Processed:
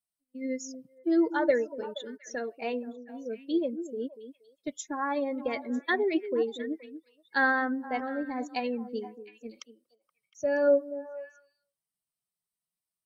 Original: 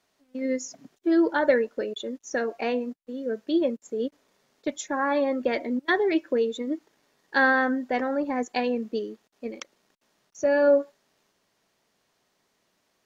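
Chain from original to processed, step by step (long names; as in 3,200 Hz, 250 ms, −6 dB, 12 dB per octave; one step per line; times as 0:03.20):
spectral dynamics exaggerated over time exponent 1.5
echo through a band-pass that steps 237 ms, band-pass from 330 Hz, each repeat 1.4 octaves, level −9.5 dB
level −2.5 dB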